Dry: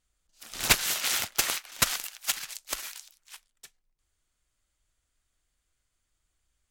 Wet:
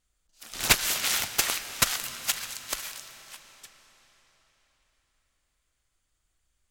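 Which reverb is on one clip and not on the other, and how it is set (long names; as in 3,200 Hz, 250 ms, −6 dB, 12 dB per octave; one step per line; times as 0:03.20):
comb and all-pass reverb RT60 4.5 s, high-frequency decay 0.9×, pre-delay 95 ms, DRR 11 dB
level +1 dB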